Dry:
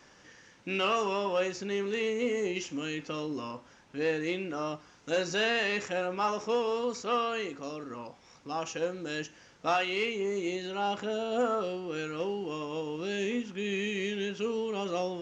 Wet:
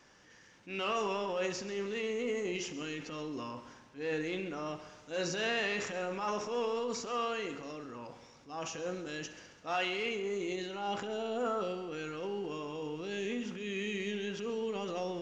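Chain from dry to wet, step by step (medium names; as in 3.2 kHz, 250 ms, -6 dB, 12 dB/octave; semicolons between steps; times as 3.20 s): transient shaper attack -8 dB, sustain +6 dB; multi-head delay 67 ms, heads first and second, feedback 57%, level -17 dB; trim -4.5 dB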